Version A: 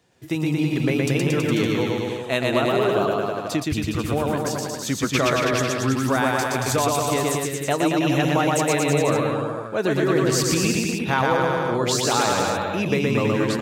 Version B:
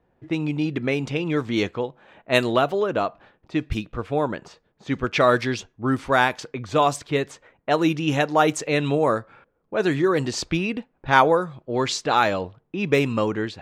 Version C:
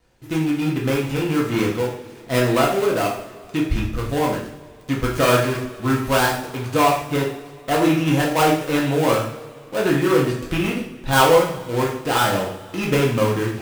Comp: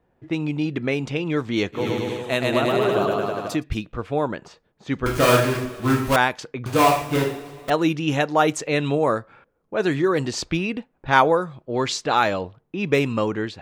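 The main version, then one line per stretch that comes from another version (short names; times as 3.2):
B
1.8–3.56 from A, crossfade 0.16 s
5.06–6.16 from C
6.66–7.7 from C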